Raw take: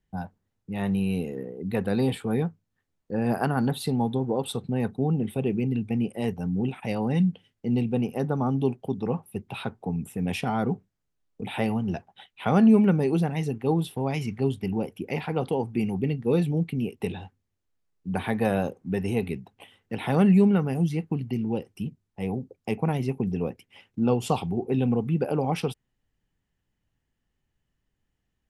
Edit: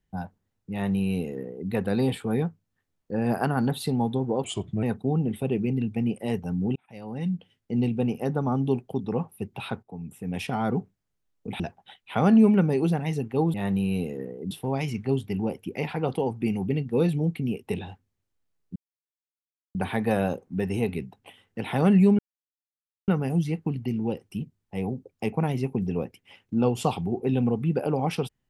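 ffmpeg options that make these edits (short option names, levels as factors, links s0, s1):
-filter_complex "[0:a]asplit=10[s0][s1][s2][s3][s4][s5][s6][s7][s8][s9];[s0]atrim=end=4.444[s10];[s1]atrim=start=4.44:end=4.77,asetpts=PTS-STARTPTS,asetrate=37485,aresample=44100,atrim=end_sample=17121,asetpts=PTS-STARTPTS[s11];[s2]atrim=start=4.766:end=6.7,asetpts=PTS-STARTPTS,afade=t=out:st=1.93:d=0.004:c=hsin[s12];[s3]atrim=start=6.7:end=9.77,asetpts=PTS-STARTPTS,afade=t=in:d=1,afade=t=out:st=3.066:d=0.004:c=hsin:silence=0.237137[s13];[s4]atrim=start=9.77:end=11.542,asetpts=PTS-STARTPTS,afade=t=in:d=0.84:silence=0.237137[s14];[s5]atrim=start=11.898:end=13.842[s15];[s6]atrim=start=0.718:end=1.692[s16];[s7]atrim=start=13.838:end=18.09,asetpts=PTS-STARTPTS,afade=t=out:st=4.248:d=0.004:c=hsin,apad=pad_dur=0.99[s17];[s8]atrim=start=18.09:end=20.53,asetpts=PTS-STARTPTS,afade=t=in:d=0.004:c=hsin,afade=t=out:st=2.436:d=0.004:c=hsin,apad=pad_dur=0.89[s18];[s9]atrim=start=20.53,asetpts=PTS-STARTPTS,afade=t=in:d=0.004:c=hsin[s19];[s10][s11]acrossfade=d=0.004:c1=hsin:c2=hsin[s20];[s12][s13][s14]concat=n=3:v=0:a=1[s21];[s20][s21]acrossfade=d=0.004:c1=hsin:c2=hsin[s22];[s22][s15]acrossfade=d=0.004:c1=hsin:c2=hsin[s23];[s23][s16]acrossfade=d=0.004:c1=hsin:c2=hsin[s24];[s17][s18][s19]concat=n=3:v=0:a=1[s25];[s24][s25]acrossfade=d=0.004:c1=hsin:c2=hsin"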